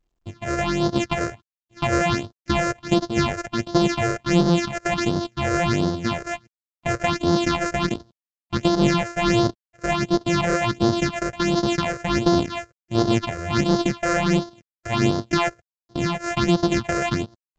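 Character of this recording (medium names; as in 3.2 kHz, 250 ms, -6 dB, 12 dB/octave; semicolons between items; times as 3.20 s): a buzz of ramps at a fixed pitch in blocks of 128 samples; phasing stages 6, 1.4 Hz, lowest notch 230–2400 Hz; µ-law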